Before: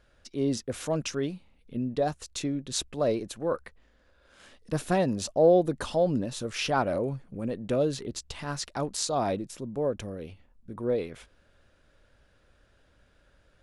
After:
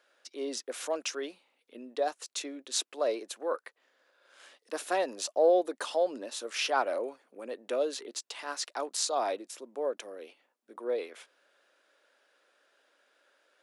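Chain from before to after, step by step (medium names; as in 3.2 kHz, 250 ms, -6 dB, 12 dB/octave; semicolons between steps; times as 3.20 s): Bessel high-pass 530 Hz, order 8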